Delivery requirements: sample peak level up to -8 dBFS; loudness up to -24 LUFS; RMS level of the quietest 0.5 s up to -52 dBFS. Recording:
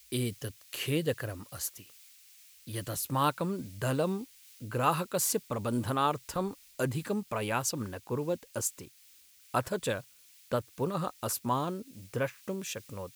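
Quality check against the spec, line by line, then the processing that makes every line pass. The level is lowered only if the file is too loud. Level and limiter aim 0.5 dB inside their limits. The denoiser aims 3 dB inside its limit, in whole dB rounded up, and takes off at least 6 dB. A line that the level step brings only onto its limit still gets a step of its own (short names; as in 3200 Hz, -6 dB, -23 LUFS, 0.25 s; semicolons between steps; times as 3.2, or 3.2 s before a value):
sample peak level -13.0 dBFS: OK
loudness -33.0 LUFS: OK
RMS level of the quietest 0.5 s -59 dBFS: OK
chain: none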